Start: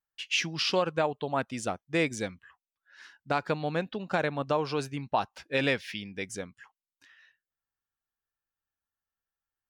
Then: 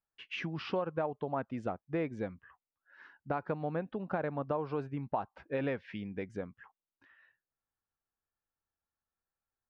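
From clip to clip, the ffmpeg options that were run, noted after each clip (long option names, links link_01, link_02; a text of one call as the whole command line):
ffmpeg -i in.wav -af "lowpass=1300,acompressor=threshold=-38dB:ratio=2,volume=2dB" out.wav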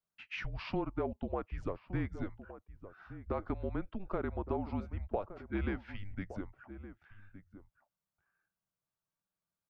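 ffmpeg -i in.wav -filter_complex "[0:a]afreqshift=-200,asplit=2[link_01][link_02];[link_02]adelay=1166,volume=-13dB,highshelf=frequency=4000:gain=-26.2[link_03];[link_01][link_03]amix=inputs=2:normalize=0,volume=-1.5dB" out.wav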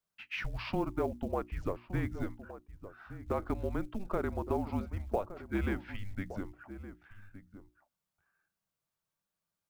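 ffmpeg -i in.wav -af "bandreject=frequency=60:width_type=h:width=6,bandreject=frequency=120:width_type=h:width=6,bandreject=frequency=180:width_type=h:width=6,bandreject=frequency=240:width_type=h:width=6,bandreject=frequency=300:width_type=h:width=6,bandreject=frequency=360:width_type=h:width=6,acrusher=bits=8:mode=log:mix=0:aa=0.000001,volume=3dB" out.wav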